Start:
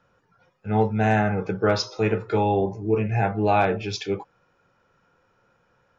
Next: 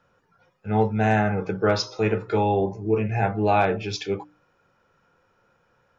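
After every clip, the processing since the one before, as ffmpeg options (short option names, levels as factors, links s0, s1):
-af "bandreject=f=60:t=h:w=6,bandreject=f=120:t=h:w=6,bandreject=f=180:t=h:w=6,bandreject=f=240:t=h:w=6,bandreject=f=300:t=h:w=6"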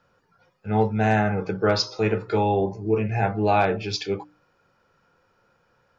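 -af "equalizer=f=4600:w=5.4:g=7.5"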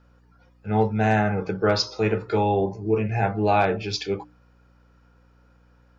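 -af "aeval=exprs='val(0)+0.00158*(sin(2*PI*60*n/s)+sin(2*PI*2*60*n/s)/2+sin(2*PI*3*60*n/s)/3+sin(2*PI*4*60*n/s)/4+sin(2*PI*5*60*n/s)/5)':c=same"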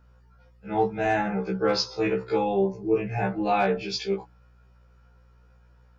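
-af "afftfilt=real='re*1.73*eq(mod(b,3),0)':imag='im*1.73*eq(mod(b,3),0)':win_size=2048:overlap=0.75"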